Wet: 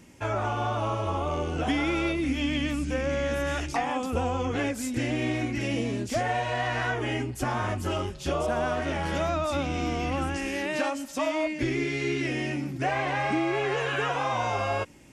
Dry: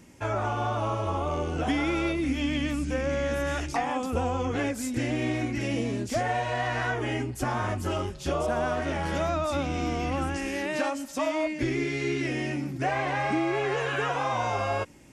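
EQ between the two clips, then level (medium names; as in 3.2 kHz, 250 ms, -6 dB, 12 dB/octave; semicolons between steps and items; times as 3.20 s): peaking EQ 2.9 kHz +2.5 dB; 0.0 dB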